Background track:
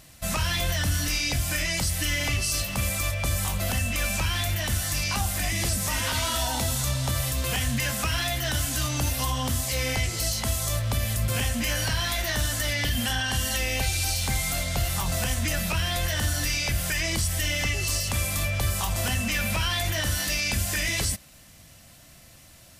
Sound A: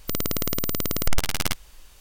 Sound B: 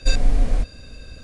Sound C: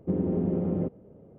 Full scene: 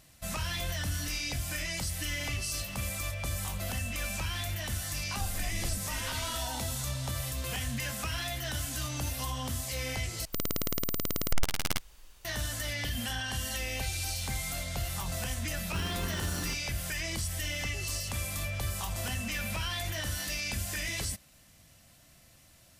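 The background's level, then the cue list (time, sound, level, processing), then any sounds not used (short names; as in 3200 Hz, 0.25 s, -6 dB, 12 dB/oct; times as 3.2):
background track -8 dB
5.14 add B -9.5 dB + compressor, threshold -25 dBFS
10.25 replace with A -6 dB
15.66 add C -13 dB + sample sorter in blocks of 32 samples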